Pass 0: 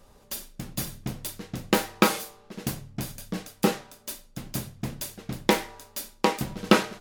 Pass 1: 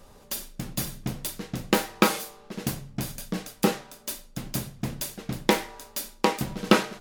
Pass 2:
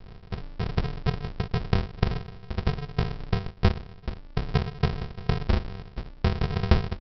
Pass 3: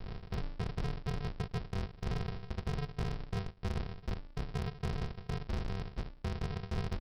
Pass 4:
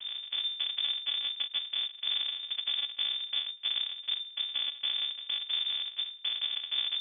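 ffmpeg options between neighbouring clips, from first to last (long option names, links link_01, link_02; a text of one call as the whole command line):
ffmpeg -i in.wav -filter_complex "[0:a]bandreject=frequency=50:width_type=h:width=6,bandreject=frequency=100:width_type=h:width=6,asplit=2[link_01][link_02];[link_02]acompressor=threshold=-35dB:ratio=6,volume=-2dB[link_03];[link_01][link_03]amix=inputs=2:normalize=0,volume=-1dB" out.wav
ffmpeg -i in.wav -af "alimiter=limit=-12dB:level=0:latency=1:release=197,aresample=11025,acrusher=samples=38:mix=1:aa=0.000001,aresample=44100,volume=7dB" out.wav
ffmpeg -i in.wav -af "areverse,acompressor=threshold=-33dB:ratio=16,areverse,asoftclip=type=hard:threshold=-33dB,volume=2.5dB" out.wav
ffmpeg -i in.wav -filter_complex "[0:a]asplit=2[link_01][link_02];[link_02]acrusher=samples=10:mix=1:aa=0.000001,volume=-7.5dB[link_03];[link_01][link_03]amix=inputs=2:normalize=0,lowpass=frequency=3100:width_type=q:width=0.5098,lowpass=frequency=3100:width_type=q:width=0.6013,lowpass=frequency=3100:width_type=q:width=0.9,lowpass=frequency=3100:width_type=q:width=2.563,afreqshift=-3600" out.wav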